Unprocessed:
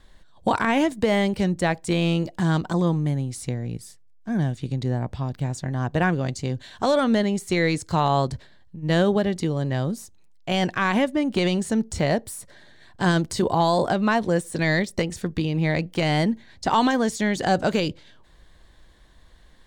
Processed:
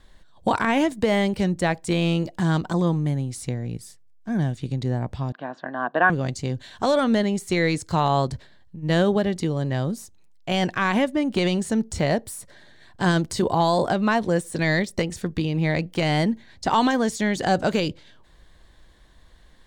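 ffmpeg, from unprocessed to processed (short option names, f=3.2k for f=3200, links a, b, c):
-filter_complex "[0:a]asettb=1/sr,asplit=3[a][b][c];[a]atrim=end=5.324[d];[b]atrim=start=5.32:end=6.1,asetpts=PTS-STARTPTS,afade=t=in:d=0.004:c=qsin,afade=t=out:st=0.776:d=0.004:c=qsin,highpass=f=250:w=0.5412,highpass=f=250:w=1.3066,equalizer=f=410:t=q:w=4:g=-5,equalizer=f=670:t=q:w=4:g=7,equalizer=f=1.1k:t=q:w=4:g=8,equalizer=f=1.6k:t=q:w=4:g=10,equalizer=f=2.2k:t=q:w=4:g=-10,lowpass=f=3.3k:w=0.5412,lowpass=f=3.3k:w=1.3066[e];[c]atrim=start=6.096[f];[d][e]acrossfade=d=0.004:c1=hsin:c2=qsin[g];[g][f]acrossfade=d=0.004:c1=qsin:c2=hsin"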